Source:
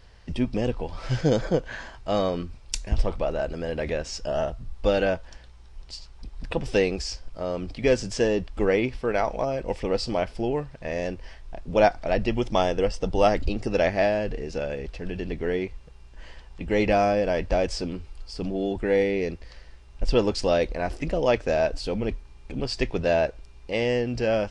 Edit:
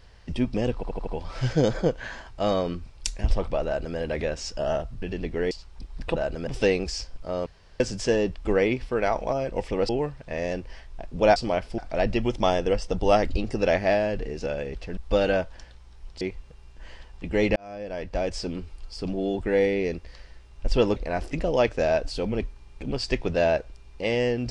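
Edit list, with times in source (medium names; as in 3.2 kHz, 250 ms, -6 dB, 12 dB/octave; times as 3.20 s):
0.75 s: stutter 0.08 s, 5 plays
3.34–3.65 s: copy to 6.59 s
4.70–5.94 s: swap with 15.09–15.58 s
7.58–7.92 s: room tone
10.01–10.43 s: move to 11.90 s
16.93–17.96 s: fade in
20.33–20.65 s: delete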